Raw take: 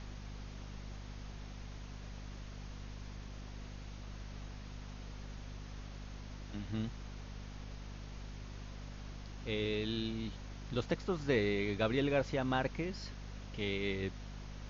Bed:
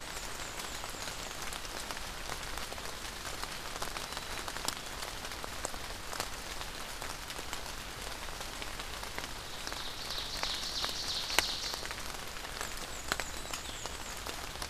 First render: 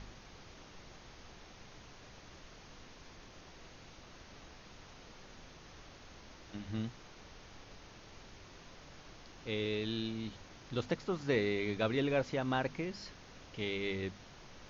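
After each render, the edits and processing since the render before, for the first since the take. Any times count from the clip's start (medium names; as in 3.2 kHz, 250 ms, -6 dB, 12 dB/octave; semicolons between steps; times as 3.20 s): de-hum 50 Hz, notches 5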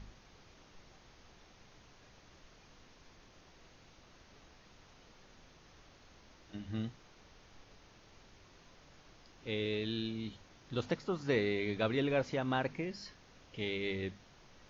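noise print and reduce 6 dB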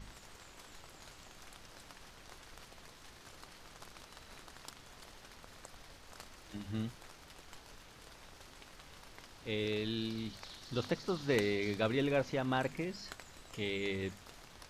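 add bed -15.5 dB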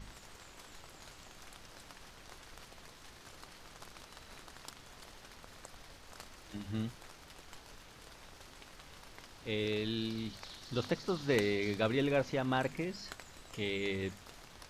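trim +1 dB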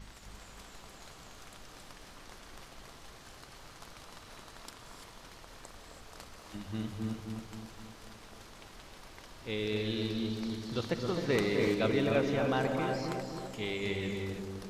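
on a send: bucket-brigade echo 262 ms, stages 2048, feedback 53%, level -3.5 dB; on the sum: gated-style reverb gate 360 ms rising, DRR 4.5 dB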